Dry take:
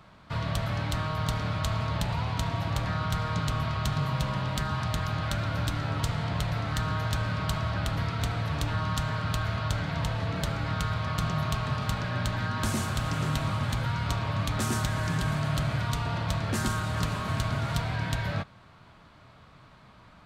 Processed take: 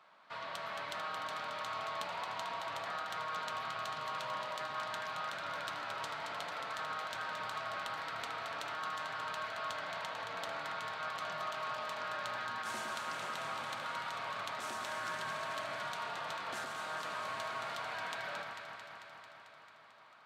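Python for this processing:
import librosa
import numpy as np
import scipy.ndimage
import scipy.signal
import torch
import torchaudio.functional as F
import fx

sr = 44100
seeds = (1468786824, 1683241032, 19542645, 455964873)

y = scipy.signal.sosfilt(scipy.signal.butter(2, 650.0, 'highpass', fs=sr, output='sos'), x)
y = fx.high_shelf(y, sr, hz=5500.0, db=-10.0)
y = fx.over_compress(y, sr, threshold_db=-36.0, ratio=-0.5)
y = fx.echo_alternate(y, sr, ms=111, hz=1600.0, feedback_pct=85, wet_db=-4.5)
y = y * 10.0 ** (-5.5 / 20.0)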